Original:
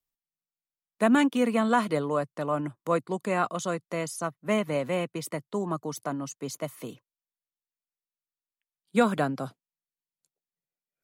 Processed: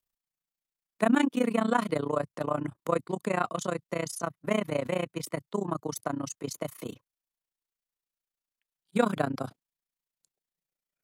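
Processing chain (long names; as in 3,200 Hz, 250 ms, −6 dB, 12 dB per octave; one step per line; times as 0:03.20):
in parallel at −2.5 dB: downward compressor, threshold −33 dBFS, peak gain reduction 15.5 dB
on the sum: amplitude modulation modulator 29 Hz, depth 85%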